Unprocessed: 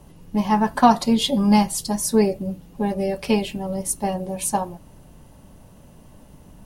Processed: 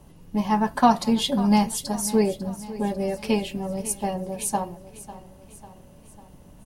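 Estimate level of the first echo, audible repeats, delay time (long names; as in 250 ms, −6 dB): −16.0 dB, 4, 547 ms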